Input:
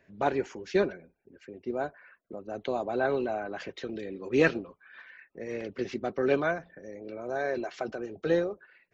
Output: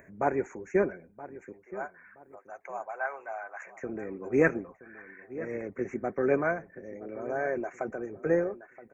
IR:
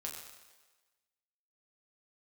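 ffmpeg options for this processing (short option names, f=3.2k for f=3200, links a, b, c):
-filter_complex "[0:a]asettb=1/sr,asplit=3[a][b][c];[a]atrim=end=1.524[d];[b]atrim=start=1.52:end=3.83,asetpts=PTS-STARTPTS,afade=t=in:d=0.004:c=qsin,afade=t=out:st=2.306:d=0.004:c=qsin,highpass=f=760:w=0.5412,highpass=f=760:w=1.3066[e];[c]atrim=start=3.826[f];[d][e]acrossfade=d=0.004:c1=hsin:c2=qsin[g];[g][f]acrossfade=d=0.004:c1=qsin:c2=hsin,acompressor=mode=upward:threshold=-48dB:ratio=2.5,asuperstop=centerf=3900:order=12:qfactor=0.97,asplit=2[h][i];[i]adelay=973,lowpass=f=1.9k:p=1,volume=-16dB,asplit=2[j][k];[k]adelay=973,lowpass=f=1.9k:p=1,volume=0.3,asplit=2[l][m];[m]adelay=973,lowpass=f=1.9k:p=1,volume=0.3[n];[h][j][l][n]amix=inputs=4:normalize=0"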